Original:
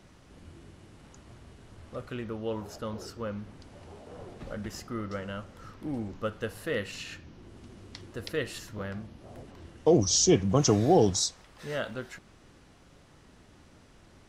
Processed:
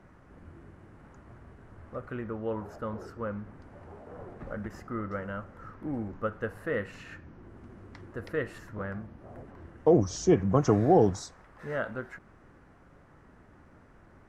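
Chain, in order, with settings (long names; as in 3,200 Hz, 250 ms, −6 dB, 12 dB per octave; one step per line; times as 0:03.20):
high shelf with overshoot 2,400 Hz −13 dB, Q 1.5
every ending faded ahead of time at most 310 dB per second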